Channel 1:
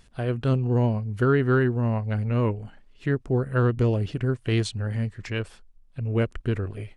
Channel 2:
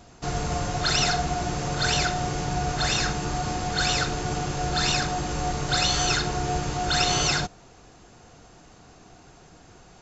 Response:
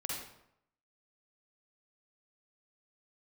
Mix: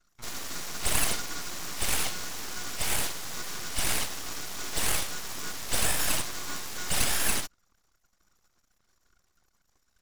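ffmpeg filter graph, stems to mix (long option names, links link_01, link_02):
-filter_complex "[0:a]alimiter=limit=-20dB:level=0:latency=1:release=44,volume=-15dB[link_01];[1:a]equalizer=frequency=5400:width=0.75:gain=8.5,acrusher=bits=3:mode=log:mix=0:aa=0.000001,volume=-5.5dB[link_02];[link_01][link_02]amix=inputs=2:normalize=0,highpass=frequency=350:width=0.5412,highpass=frequency=350:width=1.3066,anlmdn=0.00251,aeval=exprs='abs(val(0))':channel_layout=same"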